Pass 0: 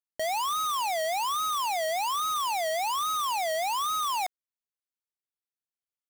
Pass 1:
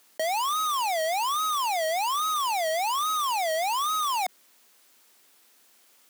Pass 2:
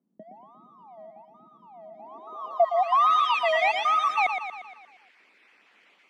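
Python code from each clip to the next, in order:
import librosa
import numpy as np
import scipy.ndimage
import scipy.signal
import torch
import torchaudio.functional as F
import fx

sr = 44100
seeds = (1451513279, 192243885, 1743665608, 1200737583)

y1 = scipy.signal.sosfilt(scipy.signal.butter(6, 200.0, 'highpass', fs=sr, output='sos'), x)
y1 = fx.env_flatten(y1, sr, amount_pct=50)
y1 = y1 * librosa.db_to_amplitude(2.0)
y2 = fx.spec_dropout(y1, sr, seeds[0], share_pct=28)
y2 = fx.echo_feedback(y2, sr, ms=117, feedback_pct=54, wet_db=-7.0)
y2 = fx.filter_sweep_lowpass(y2, sr, from_hz=190.0, to_hz=2300.0, start_s=1.93, end_s=3.18, q=2.7)
y2 = y2 * librosa.db_to_amplitude(3.0)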